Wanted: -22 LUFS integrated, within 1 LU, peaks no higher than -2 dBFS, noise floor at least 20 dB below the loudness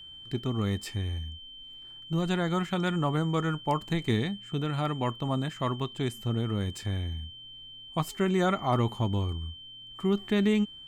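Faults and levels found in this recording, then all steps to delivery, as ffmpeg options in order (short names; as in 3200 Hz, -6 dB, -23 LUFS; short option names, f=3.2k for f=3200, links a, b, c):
steady tone 3100 Hz; tone level -44 dBFS; loudness -30.0 LUFS; peak -14.5 dBFS; loudness target -22.0 LUFS
-> -af "bandreject=f=3.1k:w=30"
-af "volume=8dB"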